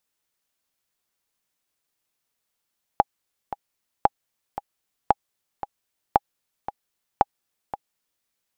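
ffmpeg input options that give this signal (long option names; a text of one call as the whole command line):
ffmpeg -f lavfi -i "aevalsrc='pow(10,(-2-14*gte(mod(t,2*60/114),60/114))/20)*sin(2*PI*816*mod(t,60/114))*exp(-6.91*mod(t,60/114)/0.03)':duration=5.26:sample_rate=44100" out.wav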